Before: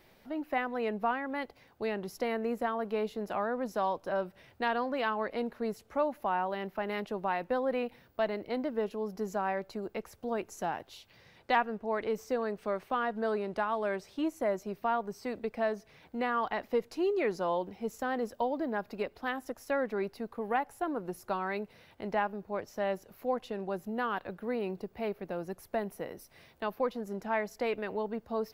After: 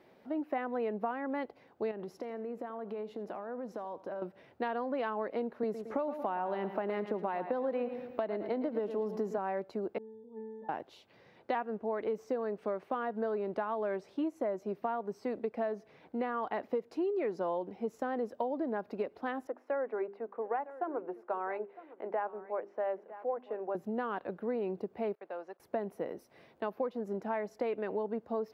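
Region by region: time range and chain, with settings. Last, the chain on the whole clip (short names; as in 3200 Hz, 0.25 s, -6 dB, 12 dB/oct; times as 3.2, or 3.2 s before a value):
1.91–4.22 high shelf 6500 Hz -4 dB + compressor 12:1, threshold -38 dBFS + feedback echo 83 ms, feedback 38%, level -19 dB
5.63–9.38 feedback echo 0.111 s, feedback 41%, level -13 dB + three-band squash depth 70%
9.98–10.69 octave resonator A, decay 0.77 s + sustainer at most 24 dB/s
19.47–23.75 three-band isolator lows -22 dB, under 330 Hz, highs -23 dB, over 2500 Hz + notches 50/100/150/200/250/300/350/400 Hz + echo 0.957 s -18.5 dB
25.15–25.6 gate -49 dBFS, range -18 dB + HPF 720 Hz + air absorption 82 m
whole clip: HPF 330 Hz 12 dB/oct; tilt -4 dB/oct; compressor, threshold -30 dBFS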